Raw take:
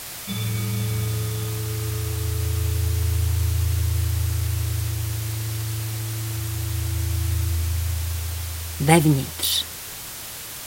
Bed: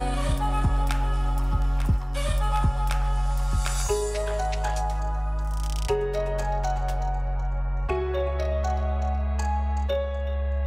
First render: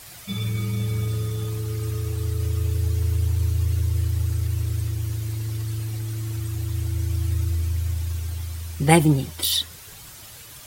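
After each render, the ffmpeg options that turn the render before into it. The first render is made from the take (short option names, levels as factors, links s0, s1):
-af "afftdn=nr=10:nf=-35"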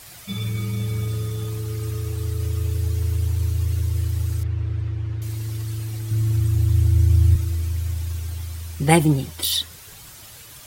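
-filter_complex "[0:a]asettb=1/sr,asplit=3[s0][s1][s2];[s0]atrim=end=4.434[s3];[s1]atrim=start=4.43:end=5.22,asetpts=PTS-STARTPTS,afade=t=in:d=0.004:c=qsin,afade=t=out:st=0.786:d=0.004:c=qsin,lowpass=2300[s4];[s2]atrim=start=5.216[s5];[s3][s4]acrossfade=d=0.004:c1=hsin:c2=qsin[s6];[s6][s5]acrossfade=d=0.004:c1=qsin:c2=hsin,asettb=1/sr,asplit=3[s7][s8][s9];[s7]atrim=end=6.114[s10];[s8]atrim=start=6.11:end=7.36,asetpts=PTS-STARTPTS,afade=t=in:d=0.004:c=qsin,afade=t=out:st=1.246:d=0.004:c=qsin,lowshelf=f=240:g=10.5[s11];[s9]atrim=start=7.356[s12];[s10][s11]acrossfade=d=0.004:c1=hsin:c2=qsin[s13];[s13][s12]acrossfade=d=0.004:c1=qsin:c2=hsin"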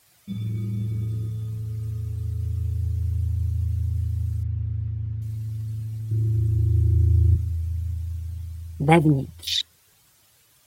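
-af "highpass=f=83:p=1,afwtdn=0.0562"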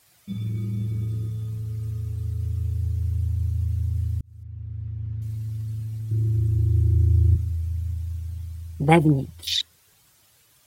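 -filter_complex "[0:a]asplit=2[s0][s1];[s0]atrim=end=4.21,asetpts=PTS-STARTPTS,afade=t=out:st=4.206:d=0.004:c=hsin[s2];[s1]atrim=start=4.21,asetpts=PTS-STARTPTS,afade=t=in:d=1.03[s3];[s2][s3]concat=n=2:v=0:a=1"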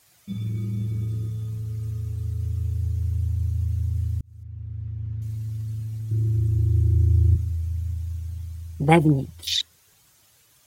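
-af "equalizer=f=6500:w=4.6:g=3.5"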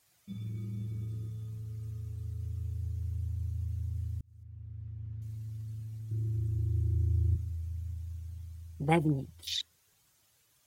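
-af "volume=0.299"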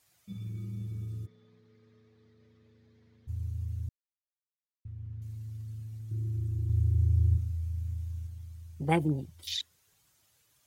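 -filter_complex "[0:a]asplit=3[s0][s1][s2];[s0]afade=t=out:st=1.25:d=0.02[s3];[s1]highpass=f=230:w=0.5412,highpass=f=230:w=1.3066,equalizer=f=330:t=q:w=4:g=-6,equalizer=f=550:t=q:w=4:g=3,equalizer=f=820:t=q:w=4:g=-3,equalizer=f=1300:t=q:w=4:g=-4,equalizer=f=1900:t=q:w=4:g=4,equalizer=f=2800:t=q:w=4:g=-9,lowpass=f=4000:w=0.5412,lowpass=f=4000:w=1.3066,afade=t=in:st=1.25:d=0.02,afade=t=out:st=3.27:d=0.02[s4];[s2]afade=t=in:st=3.27:d=0.02[s5];[s3][s4][s5]amix=inputs=3:normalize=0,asettb=1/sr,asplit=3[s6][s7][s8];[s6]atrim=end=6.674[s9];[s7]atrim=start=6.67:end=8.27,asetpts=PTS-STARTPTS,afade=t=in:d=0.004:c=qsin,afade=t=out:st=1.596:d=0.004:c=qsin,asplit=2[s10][s11];[s11]adelay=26,volume=0.708[s12];[s10][s12]amix=inputs=2:normalize=0,atrim=end_sample=70560[s13];[s8]atrim=start=8.266[s14];[s9][s13]acrossfade=d=0.004:c1=hsin:c2=qsin[s15];[s15][s14]acrossfade=d=0.004:c1=qsin:c2=hsin,asplit=3[s16][s17][s18];[s16]atrim=end=3.89,asetpts=PTS-STARTPTS,afade=t=out:st=3.886:d=0.004:c=hsin[s19];[s17]atrim=start=3.89:end=4.85,asetpts=PTS-STARTPTS,volume=0[s20];[s18]atrim=start=4.85,asetpts=PTS-STARTPTS,afade=t=in:d=0.004:c=hsin[s21];[s19][s20][s21]concat=n=3:v=0:a=1"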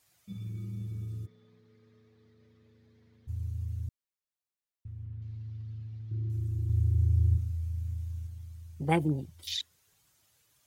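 -filter_complex "[0:a]asettb=1/sr,asplit=3[s0][s1][s2];[s0]atrim=end=5.054[s3];[s1]atrim=start=5.05:end=6.3,asetpts=PTS-STARTPTS,afade=t=in:d=0.004:c=qsin,afade=t=out:st=1.246:d=0.004:c=qsin,lowpass=f=4500:w=0.5412,lowpass=f=4500:w=1.3066[s4];[s2]atrim=start=6.296[s5];[s3][s4]acrossfade=d=0.004:c1=hsin:c2=qsin[s6];[s6][s5]acrossfade=d=0.004:c1=qsin:c2=hsin"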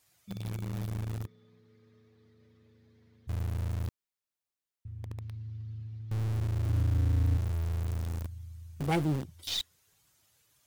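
-filter_complex "[0:a]asplit=2[s0][s1];[s1]acrusher=bits=3:dc=4:mix=0:aa=0.000001,volume=0.668[s2];[s0][s2]amix=inputs=2:normalize=0,asoftclip=type=tanh:threshold=0.0794"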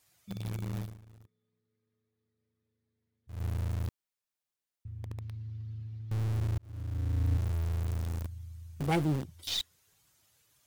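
-filter_complex "[0:a]asplit=4[s0][s1][s2][s3];[s0]atrim=end=1.02,asetpts=PTS-STARTPTS,afade=t=out:st=0.79:d=0.23:c=qua:silence=0.1[s4];[s1]atrim=start=1.02:end=3.22,asetpts=PTS-STARTPTS,volume=0.1[s5];[s2]atrim=start=3.22:end=6.58,asetpts=PTS-STARTPTS,afade=t=in:d=0.23:c=qua:silence=0.1,afade=t=out:st=3.356:d=0.004:c=hsin[s6];[s3]atrim=start=6.58,asetpts=PTS-STARTPTS,afade=t=in:d=0.85[s7];[s4][s5][s6][s7]concat=n=4:v=0:a=1"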